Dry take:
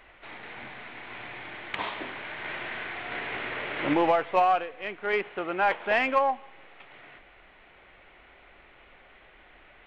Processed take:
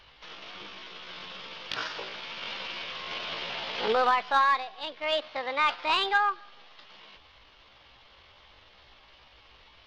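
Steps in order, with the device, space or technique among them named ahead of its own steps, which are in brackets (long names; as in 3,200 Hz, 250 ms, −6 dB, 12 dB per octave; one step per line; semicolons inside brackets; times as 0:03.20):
chipmunk voice (pitch shifter +7 semitones)
level −1 dB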